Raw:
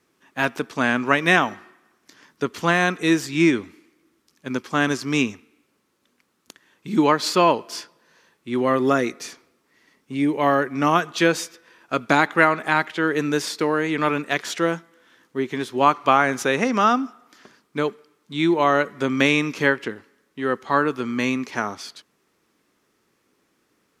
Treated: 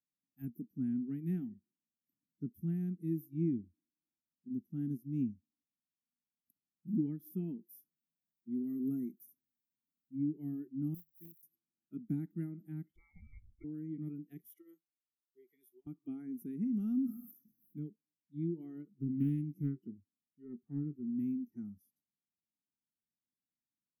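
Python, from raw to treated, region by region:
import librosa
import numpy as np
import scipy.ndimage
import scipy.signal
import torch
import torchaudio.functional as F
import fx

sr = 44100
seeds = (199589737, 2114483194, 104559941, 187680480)

y = fx.chain(x, sr, fx.highpass(hz=63.0, slope=6),
    fx.high_shelf(hz=5400.0, db=8.0), at=(7.56, 10.16))
y = fx.chain(y, sr, fx.dead_time(dead_ms=0.11),
    fx.tone_stack(knobs='5-5-5'), at=(10.94, 11.43))
y = fx.chain(y, sr, fx.highpass(hz=370.0, slope=12),
    fx.freq_invert(carrier_hz=2600), at=(12.96, 13.64))
y = fx.chain(y, sr, fx.highpass(hz=740.0, slope=12),
    fx.over_compress(threshold_db=-27.0, ratio=-0.5), at=(14.46, 15.87))
y = fx.chain(y, sr, fx.high_shelf(hz=3600.0, db=7.0),
    fx.sustainer(db_per_s=42.0), at=(16.72, 17.79))
y = fx.chain(y, sr, fx.doubler(ms=21.0, db=-13.0),
    fx.doppler_dist(depth_ms=0.31), at=(18.88, 21.1))
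y = scipy.signal.sosfilt(scipy.signal.cheby2(4, 40, [500.0, 8300.0], 'bandstop', fs=sr, output='sos'), y)
y = fx.noise_reduce_blind(y, sr, reduce_db=22)
y = y * librosa.db_to_amplitude(-7.5)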